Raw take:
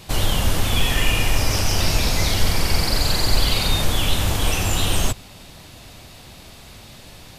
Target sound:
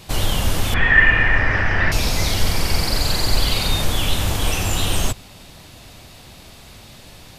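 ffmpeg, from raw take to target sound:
-filter_complex "[0:a]asettb=1/sr,asplit=3[a][b][c];[a]atrim=end=0.744[d];[b]atrim=start=0.74:end=1.92,asetpts=PTS-STARTPTS,afade=t=in:d=0.004:c=qsin,afade=t=out:st=1.176:d=0.004:c=qsin,lowpass=f=1.8k:t=q:w=9.7[e];[c]atrim=start=1.916[f];[d][e]acrossfade=d=0.004:c1=hsin:c2=qsin[g];[g][f]acrossfade=d=0.004:c1=qsin:c2=hsin"

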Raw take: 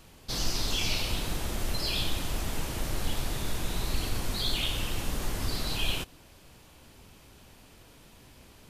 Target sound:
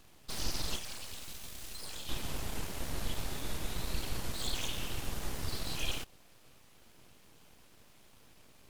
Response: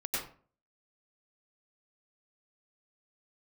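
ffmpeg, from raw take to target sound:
-filter_complex "[0:a]asettb=1/sr,asplit=3[a][b][c];[a]atrim=end=0.764[d];[b]atrim=start=0.76:end=2.09,asetpts=PTS-STARTPTS,afade=t=in:d=0.004:c=qsin,afade=t=out:st=1.326:d=0.004:c=qsin,acrossover=split=240|2600[e][f][g];[e]acompressor=threshold=-41dB:ratio=4[h];[f]acompressor=threshold=-52dB:ratio=4[i];[g]acompressor=threshold=-36dB:ratio=4[j];[h][i][j]amix=inputs=3:normalize=0[k];[c]atrim=start=2.086[l];[d][k]acrossfade=d=0.004:c1=hsin:c2=qsin[m];[m][l]acrossfade=d=0.004:c1=qsin:c2=hsin,aeval=exprs='abs(val(0))':c=same,volume=-4.5dB"

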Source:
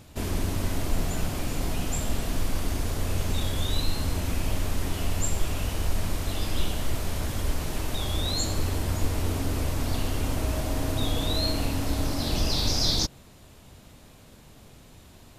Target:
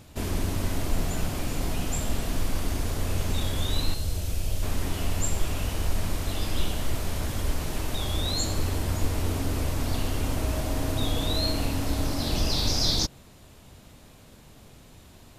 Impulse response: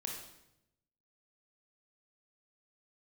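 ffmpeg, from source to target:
-filter_complex "[0:a]asettb=1/sr,asplit=3[a][b][c];[a]atrim=end=3.944[d];[b]atrim=start=3.94:end=4.63,asetpts=PTS-STARTPTS,afade=t=in:d=0.004:c=qsin,afade=t=out:st=0.686:d=0.004:c=qsin,equalizer=f=250:t=o:w=1:g=-10,equalizer=f=1k:t=o:w=1:g=-9,equalizer=f=2k:t=o:w=1:g=-7[e];[c]atrim=start=4.626[f];[d][e]acrossfade=d=0.004:c1=hsin:c2=qsin[g];[g][f]acrossfade=d=0.004:c1=qsin:c2=hsin"

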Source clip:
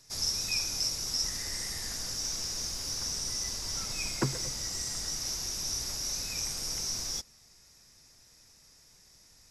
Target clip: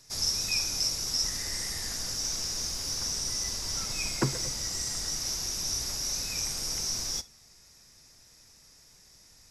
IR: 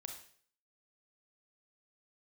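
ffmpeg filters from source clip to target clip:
-filter_complex "[0:a]asplit=2[a][b];[1:a]atrim=start_sample=2205,atrim=end_sample=3087[c];[b][c]afir=irnorm=-1:irlink=0,volume=-5.5dB[d];[a][d]amix=inputs=2:normalize=0"

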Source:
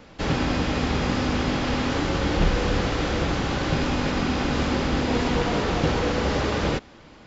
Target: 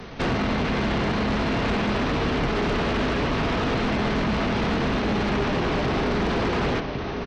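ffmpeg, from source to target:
-filter_complex "[0:a]acrossover=split=180|4700[a][b][c];[a]acompressor=threshold=-37dB:ratio=4[d];[b]acompressor=threshold=-29dB:ratio=4[e];[c]acompressor=threshold=-57dB:ratio=4[f];[d][e][f]amix=inputs=3:normalize=0,asetrate=37084,aresample=44100,atempo=1.18921,aecho=1:1:1104:0.376,aeval=exprs='0.141*(cos(1*acos(clip(val(0)/0.141,-1,1)))-cos(1*PI/2))+0.0562*(cos(5*acos(clip(val(0)/0.141,-1,1)))-cos(5*PI/2))':c=same"

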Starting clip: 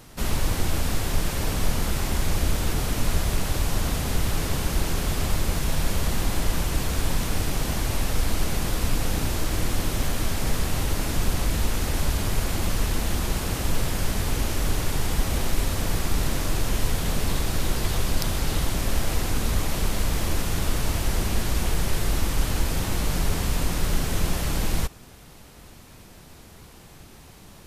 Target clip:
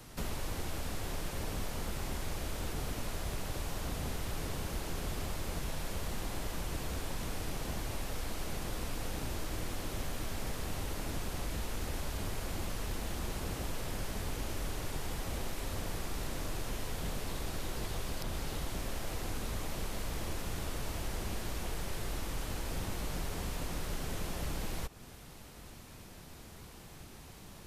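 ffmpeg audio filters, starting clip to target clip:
-filter_complex "[0:a]acrossover=split=340|760|6400[a][b][c][d];[a]alimiter=limit=-21.5dB:level=0:latency=1:release=182[e];[e][b][c][d]amix=inputs=4:normalize=0,acrossover=split=790|4100[f][g][h];[f]acompressor=threshold=-30dB:ratio=4[i];[g]acompressor=threshold=-44dB:ratio=4[j];[h]acompressor=threshold=-45dB:ratio=4[k];[i][j][k]amix=inputs=3:normalize=0,volume=-4dB"

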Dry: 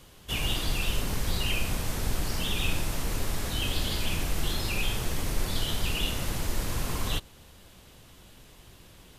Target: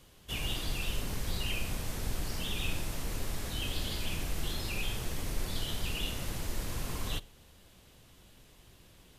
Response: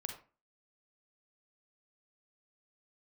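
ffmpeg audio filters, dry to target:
-filter_complex "[0:a]asplit=2[a][b];[b]asuperstop=centerf=1100:order=4:qfactor=1.7[c];[1:a]atrim=start_sample=2205[d];[c][d]afir=irnorm=-1:irlink=0,volume=-13.5dB[e];[a][e]amix=inputs=2:normalize=0,volume=-7dB"

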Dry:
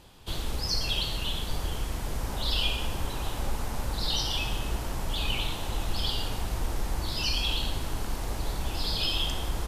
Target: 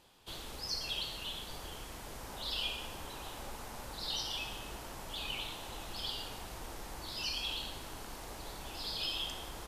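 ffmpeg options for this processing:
-af "lowshelf=f=190:g=-12,volume=-7.5dB"

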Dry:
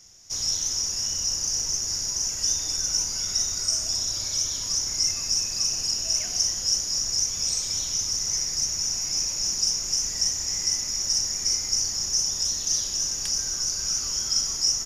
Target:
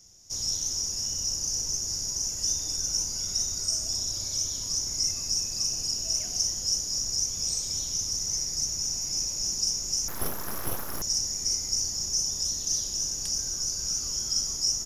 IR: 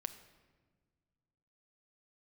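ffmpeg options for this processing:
-filter_complex "[0:a]equalizer=f=1.9k:w=0.51:g=-10,asettb=1/sr,asplit=3[a][b][c];[a]atrim=end=10.084[d];[b]atrim=start=10.08:end=11.02,asetpts=PTS-STARTPTS,afade=t=in:d=0.004:c=qsin,afade=t=out:st=0.936:d=0.004:c=qsin,aeval=exprs='abs(val(0))':c=same[e];[c]atrim=start=11.016[f];[d][e]acrossfade=d=0.004:c1=hsin:c2=qsin[g];[g][f]acrossfade=d=0.004:c1=qsin:c2=hsin"

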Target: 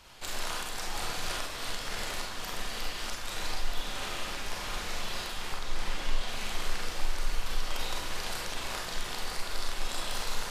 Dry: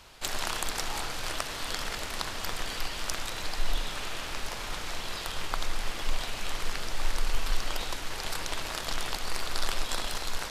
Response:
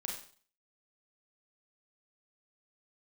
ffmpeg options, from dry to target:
-filter_complex "[0:a]asettb=1/sr,asplit=3[a][b][c];[a]atrim=end=5.574[d];[b]atrim=start=5.57:end=6.29,asetpts=PTS-STARTPTS,afade=t=in:d=0.004:c=qsin,afade=t=out:st=0.716:d=0.004:c=qsin,highshelf=f=10k:g=-7.5[e];[c]atrim=start=6.286[f];[d][e]acrossfade=d=0.004:c1=hsin:c2=qsin[g];[g][f]acrossfade=d=0.004:c1=qsin:c2=hsin,alimiter=limit=-19dB:level=0:latency=1:release=262[h];[1:a]atrim=start_sample=2205[i];[h][i]afir=irnorm=-1:irlink=0"

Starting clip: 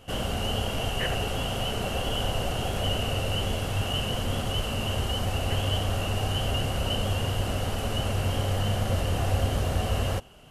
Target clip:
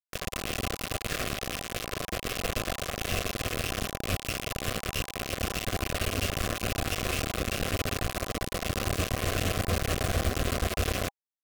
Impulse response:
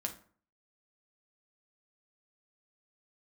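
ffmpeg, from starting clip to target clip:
-af "highshelf=f=3.7k:g=-7,acrusher=bits=3:mix=0:aa=0.000001,asuperstop=centerf=970:order=8:qfactor=4.9,asetrate=40517,aresample=44100,volume=-4dB"

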